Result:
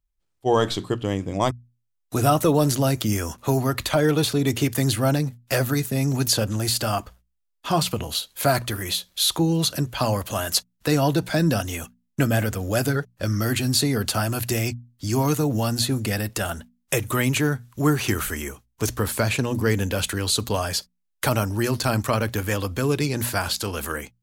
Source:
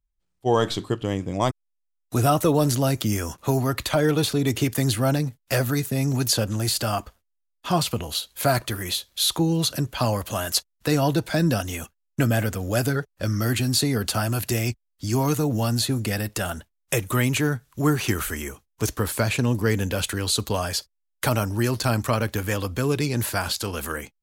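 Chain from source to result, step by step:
mains-hum notches 60/120/180/240 Hz
level +1 dB

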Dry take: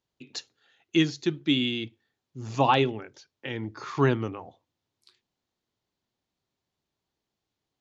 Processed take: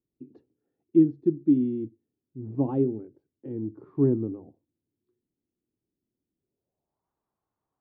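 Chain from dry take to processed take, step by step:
low-pass filter sweep 320 Hz → 1,100 Hz, 0:06.37–0:07.08
level −2.5 dB

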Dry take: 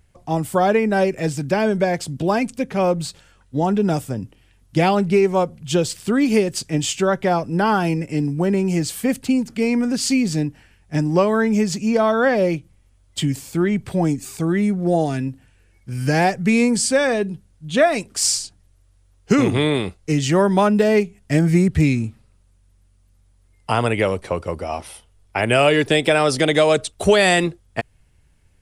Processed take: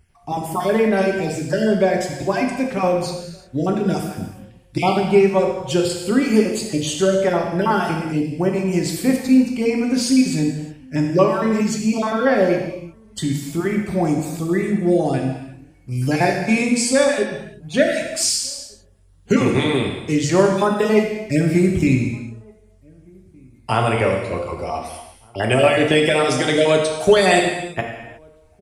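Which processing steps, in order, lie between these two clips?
time-frequency cells dropped at random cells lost 24%
slap from a distant wall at 260 metres, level −30 dB
reverb whose tail is shaped and stops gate 390 ms falling, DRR 0.5 dB
level −1 dB

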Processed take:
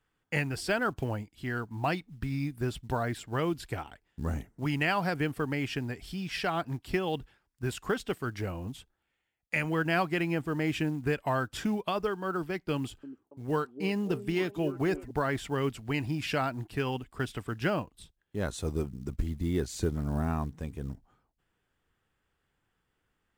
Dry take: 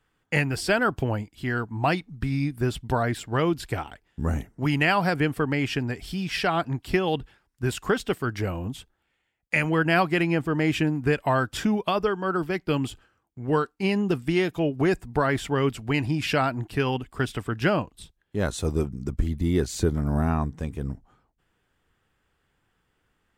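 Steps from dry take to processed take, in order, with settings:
floating-point word with a short mantissa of 4 bits
0:12.75–0:15.11: echo through a band-pass that steps 281 ms, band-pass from 320 Hz, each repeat 0.7 octaves, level −8.5 dB
level −6.5 dB

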